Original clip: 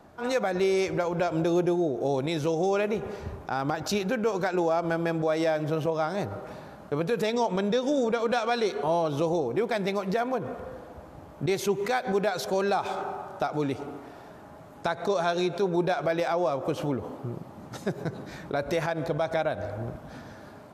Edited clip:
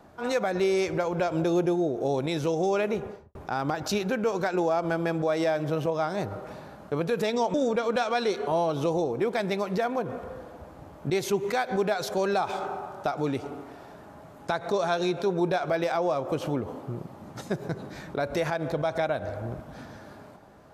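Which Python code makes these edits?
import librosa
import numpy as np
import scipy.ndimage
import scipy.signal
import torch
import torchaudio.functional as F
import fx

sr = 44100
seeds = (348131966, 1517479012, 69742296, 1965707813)

y = fx.studio_fade_out(x, sr, start_s=2.95, length_s=0.4)
y = fx.edit(y, sr, fx.cut(start_s=7.54, length_s=0.36), tone=tone)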